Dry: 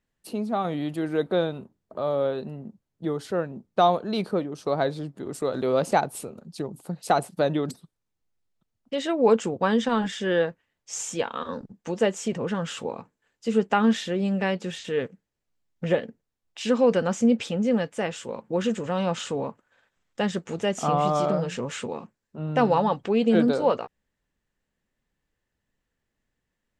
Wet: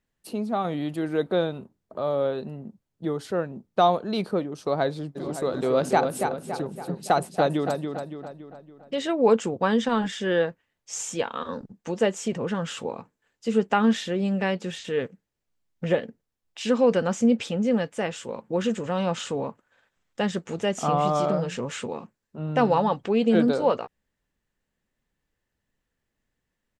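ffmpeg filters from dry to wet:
-filter_complex "[0:a]asplit=3[a][b][c];[a]afade=t=out:st=5.15:d=0.02[d];[b]asplit=2[e][f];[f]adelay=282,lowpass=f=4.3k:p=1,volume=-5.5dB,asplit=2[g][h];[h]adelay=282,lowpass=f=4.3k:p=1,volume=0.5,asplit=2[i][j];[j]adelay=282,lowpass=f=4.3k:p=1,volume=0.5,asplit=2[k][l];[l]adelay=282,lowpass=f=4.3k:p=1,volume=0.5,asplit=2[m][n];[n]adelay=282,lowpass=f=4.3k:p=1,volume=0.5,asplit=2[o][p];[p]adelay=282,lowpass=f=4.3k:p=1,volume=0.5[q];[e][g][i][k][m][o][q]amix=inputs=7:normalize=0,afade=t=in:st=5.15:d=0.02,afade=t=out:st=9.12:d=0.02[r];[c]afade=t=in:st=9.12:d=0.02[s];[d][r][s]amix=inputs=3:normalize=0"

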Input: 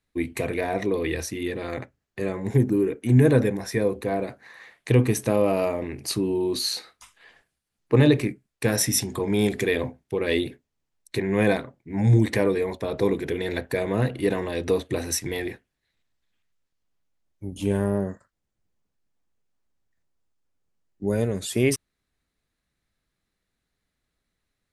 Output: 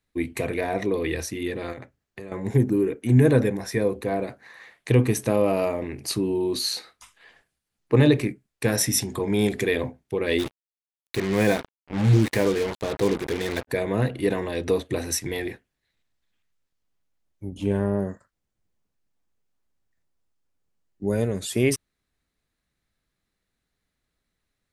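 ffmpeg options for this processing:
-filter_complex "[0:a]asettb=1/sr,asplit=3[a][b][c];[a]atrim=end=1.724[d];[b]atrim=start=1.72:end=2.32,asetpts=PTS-STARTPTS,afade=t=in:d=0.004:c=qsin,afade=t=out:st=0.596:d=0.004:c=qsin,acompressor=threshold=-33dB:ratio=12:attack=3.2:release=140:knee=1:detection=peak[e];[c]atrim=start=2.316[f];[d][e]acrossfade=d=0.004:c1=hsin:c2=qsin[g];[g][f]acrossfade=d=0.004:c1=qsin:c2=hsin,asplit=3[h][i][j];[h]afade=t=out:st=10.38:d=0.02[k];[i]acrusher=bits=4:mix=0:aa=0.5,afade=t=in:st=10.38:d=0.02,afade=t=out:st=13.67:d=0.02[l];[j]afade=t=in:st=13.67:d=0.02[m];[k][l][m]amix=inputs=3:normalize=0,asettb=1/sr,asplit=3[n][o][p];[n]atrim=end=17.494[q];[o]atrim=start=17.49:end=17.99,asetpts=PTS-STARTPTS,afade=t=in:d=0.004:c=qsin,afade=t=out:st=0.496:d=0.004:c=qsin,lowpass=f=3k:p=1[r];[p]atrim=start=17.986[s];[q][r]acrossfade=d=0.004:c1=hsin:c2=qsin[t];[t][s]acrossfade=d=0.004:c1=qsin:c2=hsin"

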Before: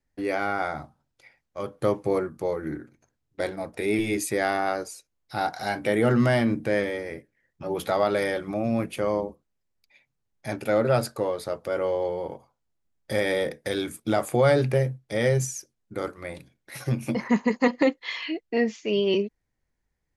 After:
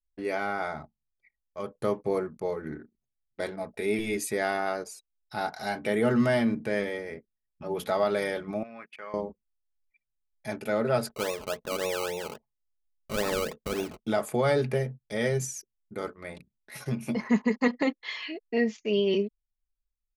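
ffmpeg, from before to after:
-filter_complex "[0:a]asettb=1/sr,asplit=3[a][b][c];[a]atrim=end=8.634[d];[b]atrim=start=8.63:end=9.14,asetpts=PTS-STARTPTS,afade=t=in:d=0.004:c=qsin,afade=t=out:st=0.506:d=0.004:c=qsin,bandpass=f=1.7k:t=q:w=1.7[e];[c]atrim=start=9.136[f];[d][e]acrossfade=d=0.004:c1=hsin:c2=qsin[g];[g][f]acrossfade=d=0.004:c1=qsin:c2=hsin,asplit=3[h][i][j];[h]afade=t=out:st=11.08:d=0.02[k];[i]acrusher=samples=20:mix=1:aa=0.000001:lfo=1:lforange=12:lforate=3.6,afade=t=in:st=11.08:d=0.02,afade=t=out:st=14.06:d=0.02[l];[j]afade=t=in:st=14.06:d=0.02[m];[k][l][m]amix=inputs=3:normalize=0,aecho=1:1:4.7:0.43,anlmdn=0.0251,volume=-4dB"

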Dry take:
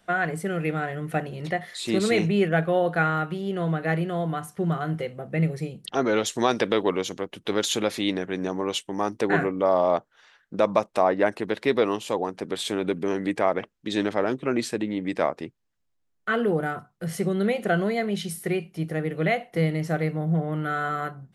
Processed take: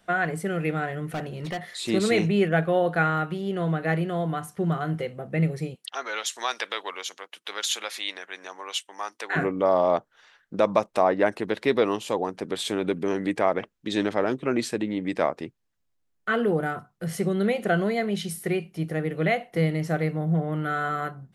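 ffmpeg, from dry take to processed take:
-filter_complex "[0:a]asettb=1/sr,asplit=3[a][b][c];[a]atrim=end=1.074[d];[b]atrim=start=1.07:end=1.67,asetpts=PTS-STARTPTS,afade=t=in:d=0.004:c=qsin,afade=t=out:st=0.596:d=0.004:c=qsin,volume=27dB,asoftclip=hard,volume=-27dB[e];[c]atrim=start=1.666[f];[d][e]acrossfade=d=0.004:c1=hsin:c2=qsin[g];[g][f]acrossfade=d=0.004:c1=qsin:c2=hsin,asplit=3[h][i][j];[h]afade=t=out:st=5.74:d=0.02[k];[i]highpass=1.1k,afade=t=in:st=5.74:d=0.02,afade=t=out:st=9.35:d=0.02[l];[j]afade=t=in:st=9.35:d=0.02[m];[k][l][m]amix=inputs=3:normalize=0"

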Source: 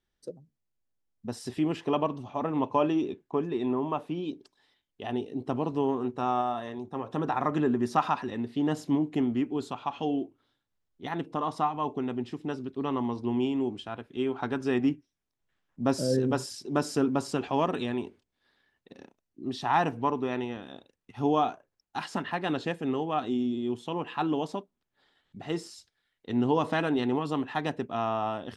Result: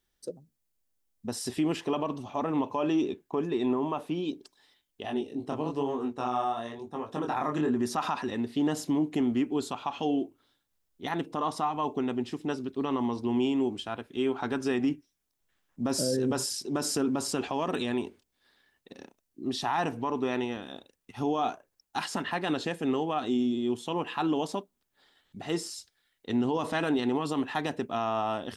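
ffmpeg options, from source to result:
-filter_complex "[0:a]asettb=1/sr,asplit=3[a][b][c];[a]atrim=end=5.024[d];[b]atrim=start=5.02:end=7.76,asetpts=PTS-STARTPTS,afade=t=in:d=0.004:c=qsin,afade=t=out:st=2.736:d=0.004:c=qsin,flanger=delay=19.5:depth=7.5:speed=1[e];[c]atrim=start=7.756[f];[d][e]acrossfade=d=0.004:c1=hsin:c2=qsin[g];[g][f]acrossfade=d=0.004:c1=qsin:c2=hsin,equalizer=f=130:t=o:w=0.71:g=-4,alimiter=limit=-21.5dB:level=0:latency=1:release=37,highshelf=f=5.8k:g=10.5,volume=2dB"

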